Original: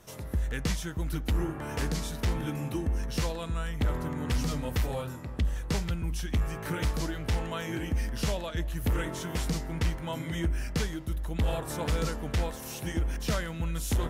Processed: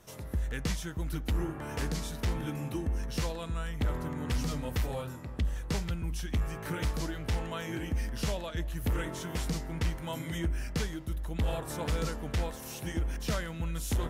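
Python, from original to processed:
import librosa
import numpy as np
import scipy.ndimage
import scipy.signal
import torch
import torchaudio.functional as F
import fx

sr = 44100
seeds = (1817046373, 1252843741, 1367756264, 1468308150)

y = fx.high_shelf(x, sr, hz=6000.0, db=7.0, at=(9.95, 10.38))
y = F.gain(torch.from_numpy(y), -2.5).numpy()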